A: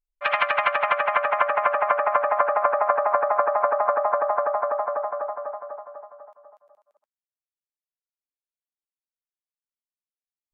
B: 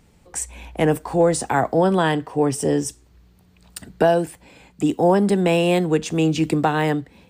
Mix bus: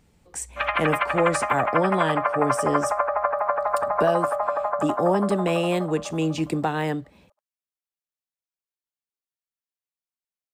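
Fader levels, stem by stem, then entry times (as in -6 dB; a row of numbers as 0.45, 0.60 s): -2.5, -5.5 dB; 0.35, 0.00 s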